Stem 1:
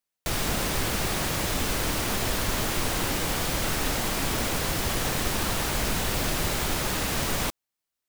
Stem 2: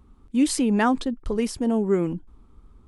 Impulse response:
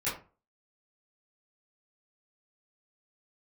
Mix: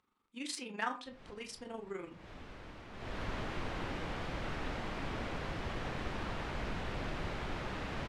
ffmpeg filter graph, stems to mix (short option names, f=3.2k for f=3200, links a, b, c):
-filter_complex "[0:a]lowpass=2.6k,adelay=800,volume=-10.5dB,afade=t=in:st=2.92:d=0.31:silence=0.281838[a];[1:a]bandpass=f=2.8k:t=q:w=0.64:csg=0,asoftclip=type=hard:threshold=-15.5dB,tremolo=f=24:d=0.75,volume=-7dB,asplit=3[b][c][d];[c]volume=-10.5dB[e];[d]apad=whole_len=391710[f];[a][f]sidechaincompress=threshold=-57dB:ratio=10:attack=16:release=239[g];[2:a]atrim=start_sample=2205[h];[e][h]afir=irnorm=-1:irlink=0[i];[g][b][i]amix=inputs=3:normalize=0"